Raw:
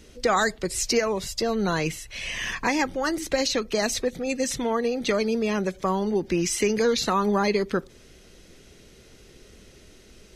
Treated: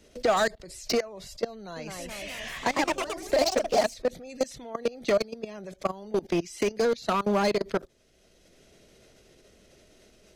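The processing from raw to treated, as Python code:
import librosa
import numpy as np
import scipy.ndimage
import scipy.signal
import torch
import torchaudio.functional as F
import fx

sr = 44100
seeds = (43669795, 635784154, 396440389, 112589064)

y = fx.dynamic_eq(x, sr, hz=4500.0, q=2.9, threshold_db=-46.0, ratio=4.0, max_db=4)
y = fx.level_steps(y, sr, step_db=23)
y = np.clip(y, -10.0 ** (-21.0 / 20.0), 10.0 ** (-21.0 / 20.0))
y = fx.echo_pitch(y, sr, ms=225, semitones=2, count=3, db_per_echo=-3.0, at=(1.54, 3.99))
y = fx.peak_eq(y, sr, hz=640.0, db=9.0, octaves=0.44)
y = fx.band_squash(y, sr, depth_pct=40)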